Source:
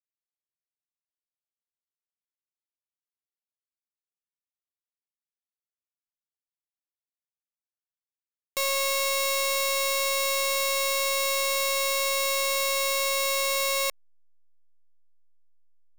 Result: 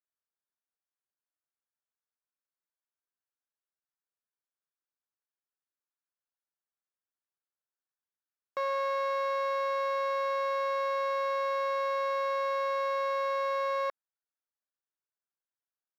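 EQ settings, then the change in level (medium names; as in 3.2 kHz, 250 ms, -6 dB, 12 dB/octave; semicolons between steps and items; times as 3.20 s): high-pass 340 Hz 12 dB/octave; distance through air 310 m; resonant high shelf 2 kHz -7 dB, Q 3; 0.0 dB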